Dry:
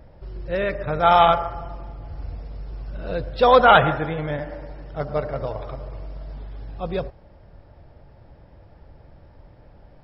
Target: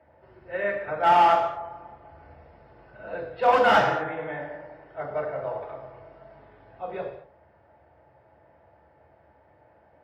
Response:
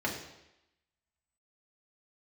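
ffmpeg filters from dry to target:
-filter_complex "[0:a]acrossover=split=480 2800:gain=0.158 1 0.141[a][b][c];[a][b][c]amix=inputs=3:normalize=0,asoftclip=type=hard:threshold=-13.5dB[d];[1:a]atrim=start_sample=2205,afade=t=out:st=0.3:d=0.01,atrim=end_sample=13671[e];[d][e]afir=irnorm=-1:irlink=0,volume=-8.5dB"

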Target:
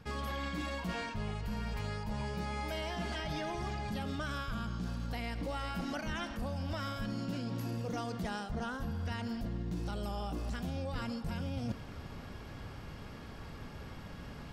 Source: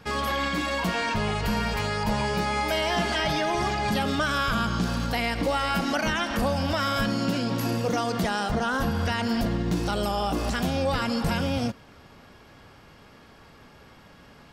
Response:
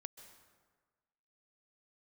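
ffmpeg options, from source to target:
-af "lowshelf=f=190:g=11,areverse,acompressor=threshold=-34dB:ratio=16,areverse"

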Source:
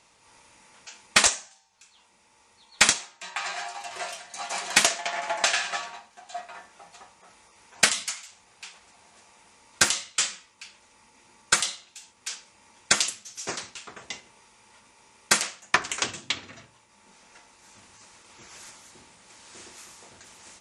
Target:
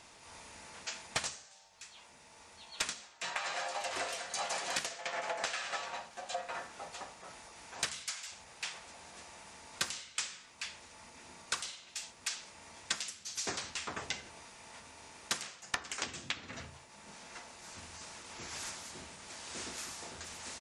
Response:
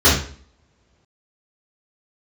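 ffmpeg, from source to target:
-filter_complex "[0:a]acompressor=threshold=-37dB:ratio=16,asplit=2[a][b];[b]asetrate=33038,aresample=44100,atempo=1.33484,volume=-5dB[c];[a][c]amix=inputs=2:normalize=0,asplit=2[d][e];[1:a]atrim=start_sample=2205[f];[e][f]afir=irnorm=-1:irlink=0,volume=-40.5dB[g];[d][g]amix=inputs=2:normalize=0,volume=2.5dB"

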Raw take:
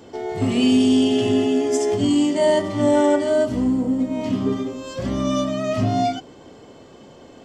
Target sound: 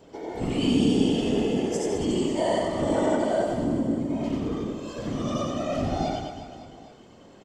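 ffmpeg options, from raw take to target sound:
-af "afftfilt=real='hypot(re,im)*cos(2*PI*random(0))':imag='hypot(re,im)*sin(2*PI*random(1))':win_size=512:overlap=0.75,aecho=1:1:90|207|359.1|556.8|813.9:0.631|0.398|0.251|0.158|0.1,volume=-2dB"

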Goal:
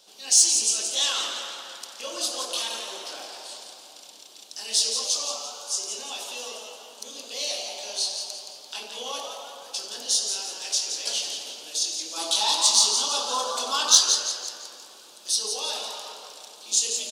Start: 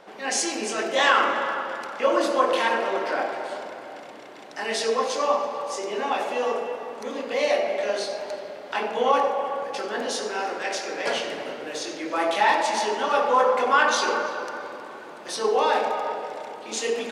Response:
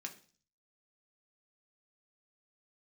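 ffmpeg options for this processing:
-filter_complex "[0:a]asplit=3[a][b][c];[a]afade=t=out:st=12.16:d=0.02[d];[b]equalizer=f=125:t=o:w=1:g=-8,equalizer=f=250:t=o:w=1:g=8,equalizer=f=1k:t=o:w=1:g=9,equalizer=f=2k:t=o:w=1:g=-6,equalizer=f=4k:t=o:w=1:g=7,equalizer=f=8k:t=o:w=1:g=5,afade=t=in:st=12.16:d=0.02,afade=t=out:st=13.97:d=0.02[e];[c]afade=t=in:st=13.97:d=0.02[f];[d][e][f]amix=inputs=3:normalize=0,asplit=6[g][h][i][j][k][l];[h]adelay=171,afreqshift=150,volume=-7.5dB[m];[i]adelay=342,afreqshift=300,volume=-15.5dB[n];[j]adelay=513,afreqshift=450,volume=-23.4dB[o];[k]adelay=684,afreqshift=600,volume=-31.4dB[p];[l]adelay=855,afreqshift=750,volume=-39.3dB[q];[g][m][n][o][p][q]amix=inputs=6:normalize=0,aexciter=amount=15.1:drive=6.5:freq=3.1k,asettb=1/sr,asplit=3[r][s][t];[r]atrim=end=2.644[u];[s]atrim=start=2.64:end=3.3,asetpts=PTS-STARTPTS,afade=t=in:d=0.004:c=qsin,afade=t=out:st=0.656:d=0.004:c=qsin,bandreject=f=4.8k:w=13[v];[t]atrim=start=3.296[w];[u][v]acrossfade=d=0.004:c1=hsin:c2=qsin[x];[x][w]acrossfade=d=0.004:c1=qsin:c2=hsin,volume=-16.5dB"

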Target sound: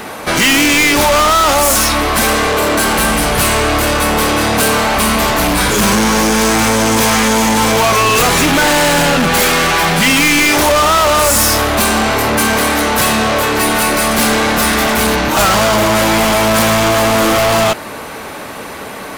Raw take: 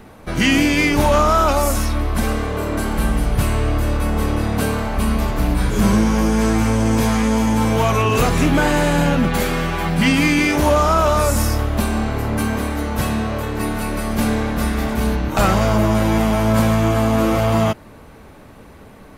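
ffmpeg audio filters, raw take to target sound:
-filter_complex "[0:a]asplit=2[a][b];[b]highpass=f=720:p=1,volume=27dB,asoftclip=type=tanh:threshold=-6dB[c];[a][c]amix=inputs=2:normalize=0,lowpass=f=4.8k:p=1,volume=-6dB,highshelf=f=5.5k:g=10.5"

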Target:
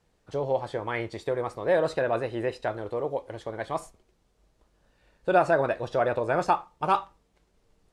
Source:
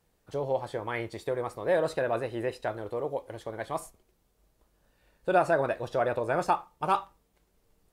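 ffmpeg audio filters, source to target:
-af "lowpass=7.5k,volume=2.5dB"

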